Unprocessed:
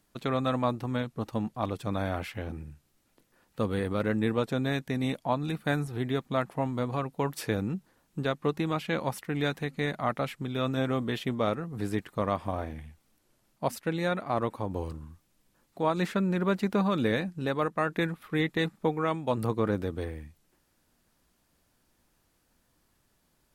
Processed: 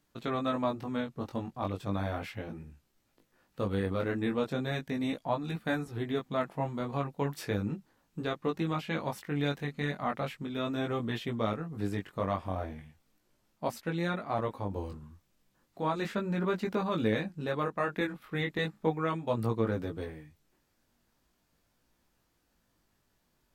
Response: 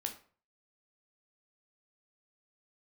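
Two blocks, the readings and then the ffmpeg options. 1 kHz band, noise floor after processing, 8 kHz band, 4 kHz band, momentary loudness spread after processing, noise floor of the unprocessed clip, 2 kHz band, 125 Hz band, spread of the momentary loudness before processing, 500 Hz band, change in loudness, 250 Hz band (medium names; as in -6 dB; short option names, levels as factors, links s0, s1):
-3.0 dB, -75 dBFS, -5.5 dB, -3.0 dB, 7 LU, -71 dBFS, -3.0 dB, -3.0 dB, 7 LU, -3.0 dB, -3.0 dB, -3.0 dB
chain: -af "equalizer=f=10000:t=o:w=0.53:g=-5.5,flanger=delay=17.5:depth=3.9:speed=0.36"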